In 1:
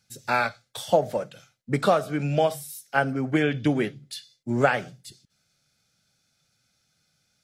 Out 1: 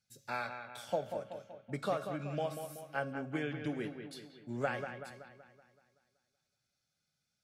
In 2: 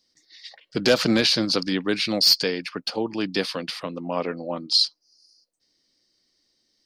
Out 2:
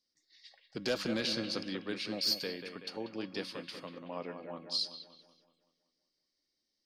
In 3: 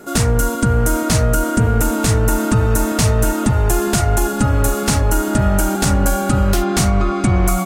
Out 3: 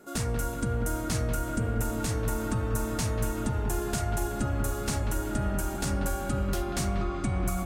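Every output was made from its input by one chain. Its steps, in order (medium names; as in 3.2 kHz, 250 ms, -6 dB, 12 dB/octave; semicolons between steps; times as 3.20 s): feedback comb 550 Hz, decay 0.61 s, mix 70%; bucket-brigade echo 189 ms, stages 4096, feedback 52%, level -8 dB; trim -4.5 dB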